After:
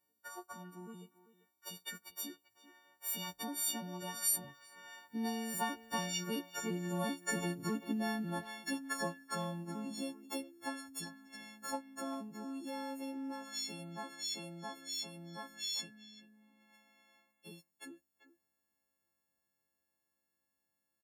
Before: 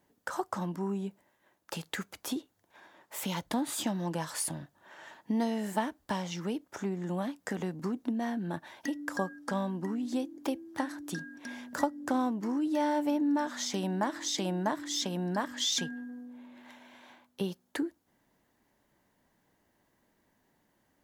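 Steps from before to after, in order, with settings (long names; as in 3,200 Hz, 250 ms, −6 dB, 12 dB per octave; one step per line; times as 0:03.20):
every partial snapped to a pitch grid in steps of 4 semitones
source passing by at 0:07.38, 10 m/s, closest 15 metres
far-end echo of a speakerphone 390 ms, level −13 dB
level −3 dB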